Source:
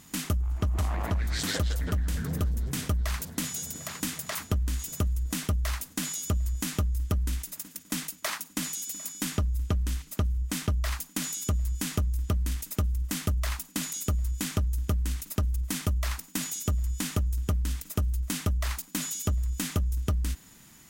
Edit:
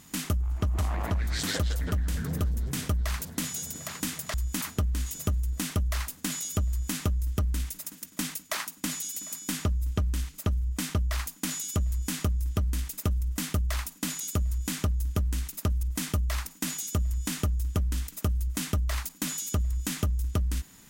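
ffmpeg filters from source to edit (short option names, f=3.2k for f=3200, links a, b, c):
-filter_complex "[0:a]asplit=3[a][b][c];[a]atrim=end=4.342[d];[b]atrim=start=6.418:end=6.692[e];[c]atrim=start=4.338[f];[d][e]acrossfade=d=0.004:c1=hsin:c2=hsin[g];[g][f]acrossfade=d=0.004:c1=hsin:c2=hsin"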